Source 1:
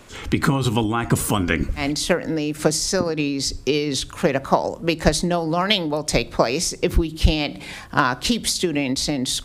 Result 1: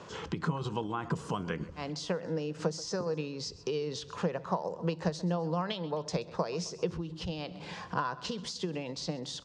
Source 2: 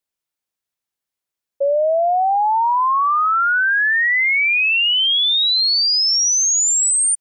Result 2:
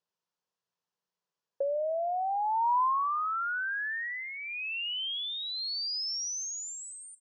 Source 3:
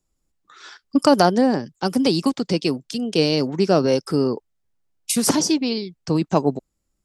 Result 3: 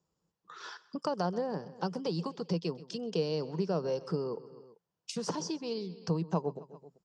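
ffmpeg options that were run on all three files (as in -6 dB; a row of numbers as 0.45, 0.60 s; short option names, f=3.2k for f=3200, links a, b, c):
-filter_complex "[0:a]asplit=2[a][b];[b]aecho=0:1:130|260|390:0.0891|0.0428|0.0205[c];[a][c]amix=inputs=2:normalize=0,acompressor=threshold=-37dB:ratio=2.5,highpass=110,equalizer=f=170:t=q:w=4:g=10,equalizer=f=260:t=q:w=4:g=-8,equalizer=f=470:t=q:w=4:g=7,equalizer=f=990:t=q:w=4:g=7,equalizer=f=2.2k:t=q:w=4:g=-8,equalizer=f=3.8k:t=q:w=4:g=-4,lowpass=f=6.1k:w=0.5412,lowpass=f=6.1k:w=1.3066,volume=-2dB"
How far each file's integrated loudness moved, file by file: -14.0, -16.5, -15.0 LU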